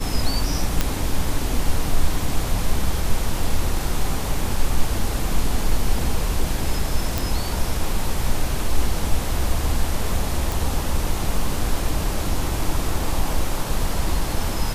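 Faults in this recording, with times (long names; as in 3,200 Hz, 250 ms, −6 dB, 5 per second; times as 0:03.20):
0:00.81: click −4 dBFS
0:07.18: click
0:10.52: click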